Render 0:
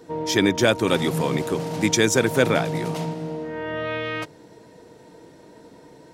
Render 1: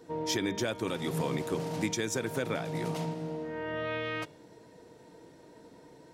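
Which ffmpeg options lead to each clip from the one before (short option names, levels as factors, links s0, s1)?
-af "bandreject=f=201.4:t=h:w=4,bandreject=f=402.8:t=h:w=4,bandreject=f=604.2:t=h:w=4,bandreject=f=805.6:t=h:w=4,bandreject=f=1007:t=h:w=4,bandreject=f=1208.4:t=h:w=4,bandreject=f=1409.8:t=h:w=4,bandreject=f=1611.2:t=h:w=4,bandreject=f=1812.6:t=h:w=4,bandreject=f=2014:t=h:w=4,bandreject=f=2215.4:t=h:w=4,bandreject=f=2416.8:t=h:w=4,bandreject=f=2618.2:t=h:w=4,bandreject=f=2819.6:t=h:w=4,bandreject=f=3021:t=h:w=4,bandreject=f=3222.4:t=h:w=4,bandreject=f=3423.8:t=h:w=4,bandreject=f=3625.2:t=h:w=4,bandreject=f=3826.6:t=h:w=4,bandreject=f=4028:t=h:w=4,bandreject=f=4229.4:t=h:w=4,alimiter=limit=0.211:level=0:latency=1:release=278,volume=0.473"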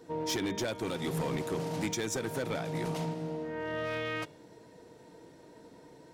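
-af "volume=23.7,asoftclip=hard,volume=0.0422"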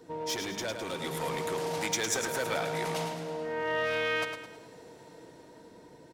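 -filter_complex "[0:a]acrossover=split=530[s0][s1];[s0]alimiter=level_in=3.98:limit=0.0631:level=0:latency=1,volume=0.251[s2];[s1]dynaudnorm=f=300:g=9:m=2[s3];[s2][s3]amix=inputs=2:normalize=0,aecho=1:1:107|214|321|428|535:0.447|0.183|0.0751|0.0308|0.0126"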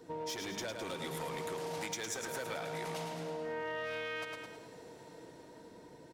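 -af "acompressor=threshold=0.0178:ratio=6,volume=0.841"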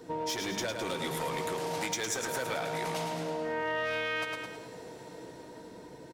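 -filter_complex "[0:a]asplit=2[s0][s1];[s1]adelay=16,volume=0.224[s2];[s0][s2]amix=inputs=2:normalize=0,volume=2"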